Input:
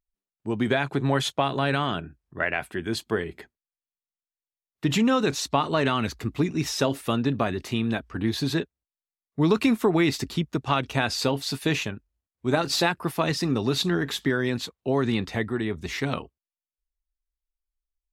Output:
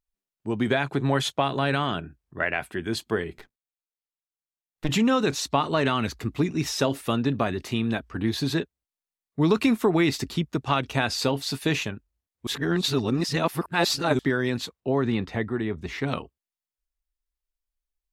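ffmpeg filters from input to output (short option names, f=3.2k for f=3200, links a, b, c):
-filter_complex "[0:a]asettb=1/sr,asplit=3[a][b][c];[a]atrim=end=3.384[d];[b]atrim=start=3.38:end=4.89,asetpts=PTS-STARTPTS,afade=t=in:d=0.004:c=qsin,afade=t=out:st=1.506:d=0.004:c=qsin,aeval=exprs='max(val(0),0)':c=same[e];[c]atrim=start=4.886[f];[d][e]acrossfade=d=0.004:c1=hsin:c2=qsin[g];[g][f]acrossfade=d=0.004:c1=qsin:c2=hsin,asettb=1/sr,asplit=3[h][i][j];[h]atrim=end=14.804[k];[i]atrim=start=14.8:end=16.08,asetpts=PTS-STARTPTS,afade=t=in:d=0.004:c=qsin,afade=t=out:st=1.276:d=0.004:c=qsin,highshelf=f=4k:g=-11.5[l];[j]atrim=start=16.076[m];[k][l]acrossfade=d=0.004:c1=hsin:c2=qsin[n];[n][m]acrossfade=d=0.004:c1=qsin:c2=hsin,asplit=3[o][p][q];[o]atrim=end=12.472[r];[p]atrim=start=12.468:end=14.192,asetpts=PTS-STARTPTS,areverse[s];[q]atrim=start=14.188[t];[r][s]acrossfade=d=0.004:c1=hsin:c2=hsin[u];[u][t]acrossfade=d=0.004:c1=hsin:c2=hsin"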